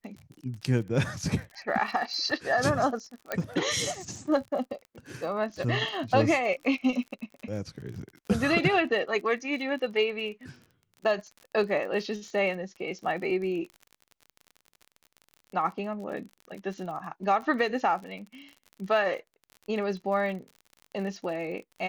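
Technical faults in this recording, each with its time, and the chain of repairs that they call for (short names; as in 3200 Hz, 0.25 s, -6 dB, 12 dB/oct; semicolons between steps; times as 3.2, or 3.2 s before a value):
crackle 42/s -38 dBFS
3.32 pop -15 dBFS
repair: de-click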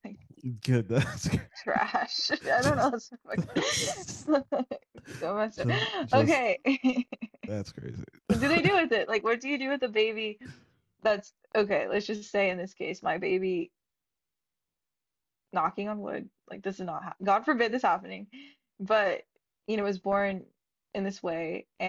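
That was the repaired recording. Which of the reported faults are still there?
3.32 pop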